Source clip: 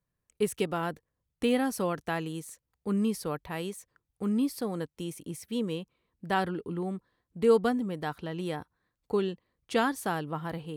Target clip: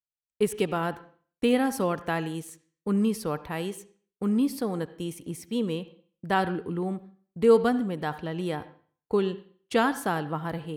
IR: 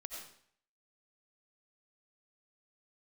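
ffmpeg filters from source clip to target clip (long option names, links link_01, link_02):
-filter_complex "[0:a]agate=range=-33dB:threshold=-43dB:ratio=3:detection=peak,asplit=2[link_01][link_02];[1:a]atrim=start_sample=2205,asetrate=57330,aresample=44100,lowpass=3700[link_03];[link_02][link_03]afir=irnorm=-1:irlink=0,volume=-4.5dB[link_04];[link_01][link_04]amix=inputs=2:normalize=0,volume=1.5dB"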